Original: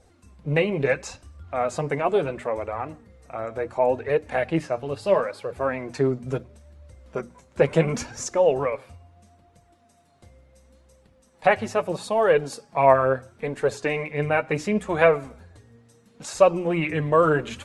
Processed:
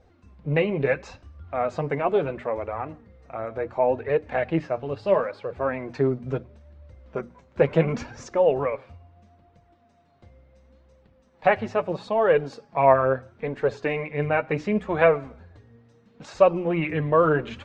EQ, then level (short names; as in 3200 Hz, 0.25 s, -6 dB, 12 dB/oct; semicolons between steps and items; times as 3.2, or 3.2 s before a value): air absorption 190 m; 0.0 dB